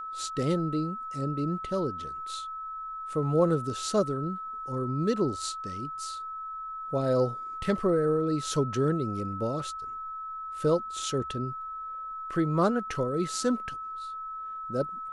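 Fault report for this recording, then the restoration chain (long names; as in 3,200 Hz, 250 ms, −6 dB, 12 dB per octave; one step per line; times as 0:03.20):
whistle 1,300 Hz −35 dBFS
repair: notch filter 1,300 Hz, Q 30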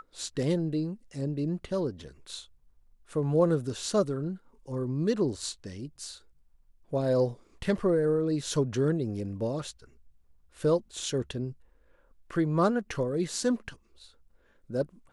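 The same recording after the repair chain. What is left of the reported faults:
none of them is left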